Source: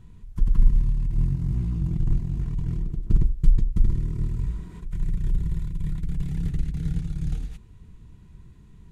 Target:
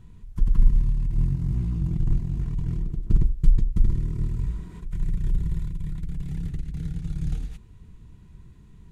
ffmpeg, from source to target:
ffmpeg -i in.wav -filter_complex "[0:a]asettb=1/sr,asplit=3[link_01][link_02][link_03];[link_01]atrim=end=5.704[link_04];[link_02]atrim=start=5.7:end=7.04,asetpts=PTS-STARTPTS,afade=type=in:duration=0.004:curve=qsin,afade=type=out:start_time=1.336:duration=0.004:curve=qsin,acompressor=threshold=-25dB:ratio=6[link_05];[link_03]atrim=start=7.036[link_06];[link_04][link_05]acrossfade=duration=0.004:curve1=hsin:curve2=qsin[link_07];[link_07][link_06]acrossfade=duration=0.004:curve1=qsin:curve2=hsin" out.wav

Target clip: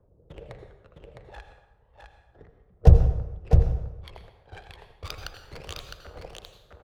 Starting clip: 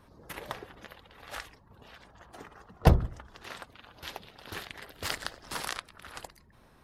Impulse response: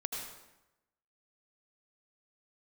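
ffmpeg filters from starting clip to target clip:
-filter_complex "[0:a]agate=range=-10dB:threshold=-48dB:ratio=16:detection=peak,aphaser=in_gain=1:out_gain=1:delay=1.3:decay=0.7:speed=0.33:type=triangular,acrossover=split=150|1100[link_01][link_02][link_03];[link_02]alimiter=limit=-12.5dB:level=0:latency=1:release=281[link_04];[link_01][link_04][link_03]amix=inputs=3:normalize=0,equalizer=frequency=250:width_type=o:width=1:gain=-12,equalizer=frequency=500:width_type=o:width=1:gain=7,equalizer=frequency=1000:width_type=o:width=1:gain=-9,equalizer=frequency=2000:width_type=o:width=1:gain=-7,equalizer=frequency=8000:width_type=o:width=1:gain=-5,adynamicsmooth=sensitivity=6:basefreq=1000,aecho=1:1:659:0.596,asplit=2[link_05][link_06];[1:a]atrim=start_sample=2205[link_07];[link_06][link_07]afir=irnorm=-1:irlink=0,volume=-3dB[link_08];[link_05][link_08]amix=inputs=2:normalize=0,volume=-4.5dB"

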